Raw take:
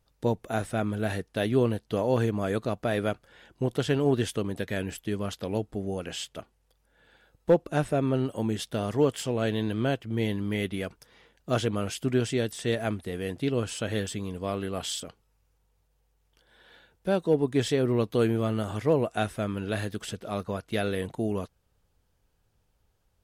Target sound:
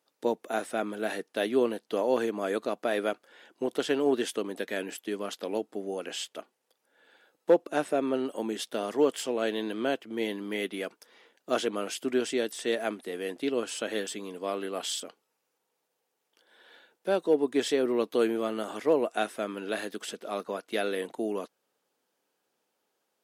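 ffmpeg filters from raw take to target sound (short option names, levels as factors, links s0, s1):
-af "highpass=f=260:w=0.5412,highpass=f=260:w=1.3066"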